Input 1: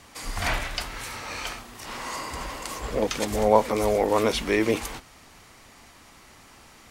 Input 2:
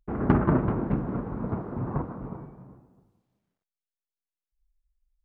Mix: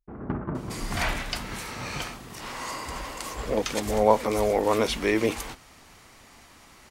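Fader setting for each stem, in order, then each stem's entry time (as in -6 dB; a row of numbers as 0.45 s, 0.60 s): -1.0 dB, -9.5 dB; 0.55 s, 0.00 s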